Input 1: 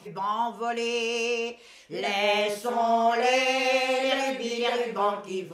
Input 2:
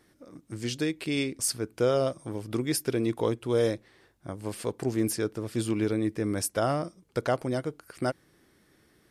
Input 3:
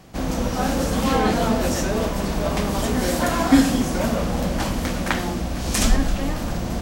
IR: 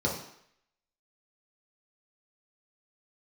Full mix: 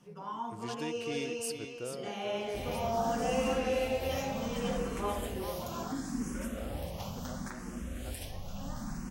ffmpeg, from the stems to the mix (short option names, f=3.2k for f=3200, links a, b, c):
-filter_complex "[0:a]volume=-14dB,asplit=3[a][b][c];[b]volume=-9dB[d];[c]volume=-5.5dB[e];[1:a]volume=-10.5dB,afade=t=out:st=1.45:d=0.63:silence=0.251189,asplit=2[f][g];[g]volume=-8.5dB[h];[2:a]highshelf=f=7.9k:g=5.5,alimiter=limit=-12.5dB:level=0:latency=1:release=305,asplit=2[i][j];[j]afreqshift=0.71[k];[i][k]amix=inputs=2:normalize=1,adelay=2400,volume=-12.5dB,asplit=2[l][m];[m]volume=-17.5dB[n];[3:a]atrim=start_sample=2205[o];[d][n]amix=inputs=2:normalize=0[p];[p][o]afir=irnorm=-1:irlink=0[q];[e][h]amix=inputs=2:normalize=0,aecho=0:1:436:1[r];[a][f][l][q][r]amix=inputs=5:normalize=0"